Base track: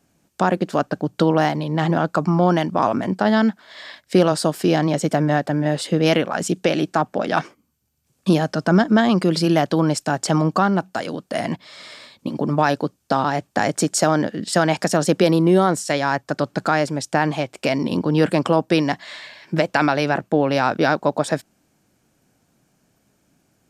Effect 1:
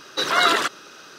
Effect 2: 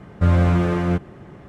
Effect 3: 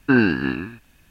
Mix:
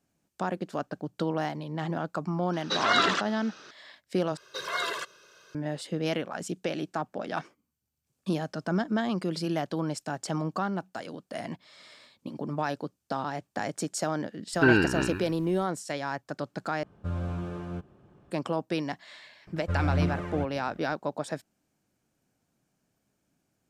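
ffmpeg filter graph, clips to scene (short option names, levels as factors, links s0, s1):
-filter_complex "[1:a]asplit=2[s0][s1];[2:a]asplit=2[s2][s3];[0:a]volume=0.237[s4];[s0]lowpass=f=6700:w=0.5412,lowpass=f=6700:w=1.3066[s5];[s1]aecho=1:1:1.9:0.78[s6];[3:a]aecho=1:1:2.1:0.51[s7];[s2]equalizer=f=2000:w=6.1:g=-13[s8];[s3]aphaser=in_gain=1:out_gain=1:delay=2.3:decay=0.54:speed=1.8:type=triangular[s9];[s4]asplit=3[s10][s11][s12];[s10]atrim=end=4.374[s13];[s6]atrim=end=1.18,asetpts=PTS-STARTPTS,volume=0.188[s14];[s11]atrim=start=5.546:end=16.834[s15];[s8]atrim=end=1.48,asetpts=PTS-STARTPTS,volume=0.158[s16];[s12]atrim=start=18.306[s17];[s5]atrim=end=1.18,asetpts=PTS-STARTPTS,volume=0.531,afade=t=in:d=0.004:c=hsin,afade=t=out:st=1.176:d=0.004:c=hsin,adelay=2530[s18];[s7]atrim=end=1.1,asetpts=PTS-STARTPTS,volume=0.708,afade=t=in:d=0.004:c=hsin,afade=t=out:st=1.096:d=0.004:c=hsin,adelay=14530[s19];[s9]atrim=end=1.48,asetpts=PTS-STARTPTS,volume=0.211,afade=t=in:d=0.004:c=hsin,afade=t=out:st=1.476:d=0.004:c=hsin,adelay=19470[s20];[s13][s14]acrossfade=d=0.004:c1=hsin:c2=hsin[s21];[s21][s15]acrossfade=d=0.004:c1=hsin:c2=hsin[s22];[s22][s16]acrossfade=d=0.004:c1=hsin:c2=hsin[s23];[s23][s17]acrossfade=d=0.004:c1=hsin:c2=hsin[s24];[s24][s18][s19][s20]amix=inputs=4:normalize=0"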